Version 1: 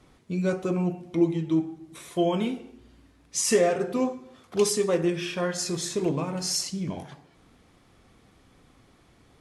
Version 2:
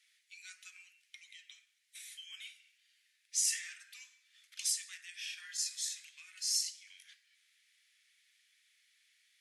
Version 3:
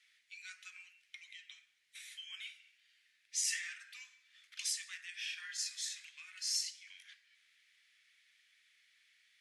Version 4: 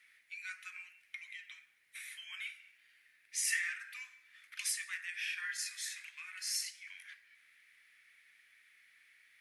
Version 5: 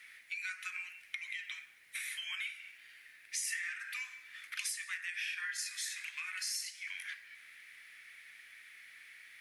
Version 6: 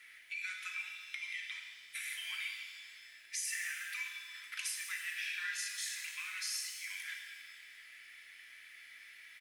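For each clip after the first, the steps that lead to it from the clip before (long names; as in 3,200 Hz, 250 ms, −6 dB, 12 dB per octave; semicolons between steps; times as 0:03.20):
Butterworth high-pass 1,800 Hz 48 dB per octave; dynamic equaliser 2,400 Hz, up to −5 dB, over −49 dBFS, Q 0.95; level −3.5 dB
low-pass filter 2,400 Hz 6 dB per octave; level +5.5 dB
flat-topped bell 4,800 Hz −10.5 dB; level +8 dB
downward compressor 4 to 1, threshold −48 dBFS, peak gain reduction 15.5 dB; level +10 dB
comb filter 3 ms, depth 35%; reverb with rising layers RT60 1.6 s, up +7 semitones, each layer −8 dB, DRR 3 dB; level −2.5 dB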